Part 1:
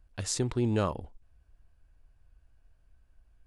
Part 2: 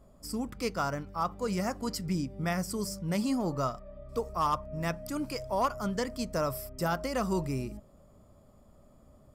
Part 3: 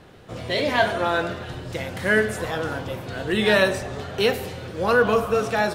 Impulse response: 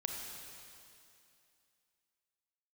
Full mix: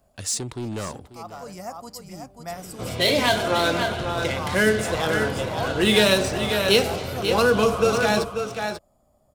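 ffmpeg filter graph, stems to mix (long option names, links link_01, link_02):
-filter_complex "[0:a]highpass=89,acontrast=71,asoftclip=type=tanh:threshold=-20dB,volume=-5.5dB,asplit=3[link_01][link_02][link_03];[link_02]volume=-15.5dB[link_04];[1:a]equalizer=frequency=730:width_type=o:width=0.72:gain=12,volume=-10dB,asplit=2[link_05][link_06];[link_06]volume=-6dB[link_07];[2:a]bandreject=frequency=1800:width=9.3,adynamicsmooth=sensitivity=7:basefreq=4400,adelay=2500,volume=2.5dB,asplit=2[link_08][link_09];[link_09]volume=-8.5dB[link_10];[link_03]apad=whole_len=412203[link_11];[link_05][link_11]sidechaincompress=threshold=-41dB:ratio=8:attack=16:release=632[link_12];[link_04][link_07][link_10]amix=inputs=3:normalize=0,aecho=0:1:539:1[link_13];[link_01][link_12][link_08][link_13]amix=inputs=4:normalize=0,highshelf=frequency=4100:gain=11,acrossover=split=440|3000[link_14][link_15][link_16];[link_15]acompressor=threshold=-20dB:ratio=6[link_17];[link_14][link_17][link_16]amix=inputs=3:normalize=0"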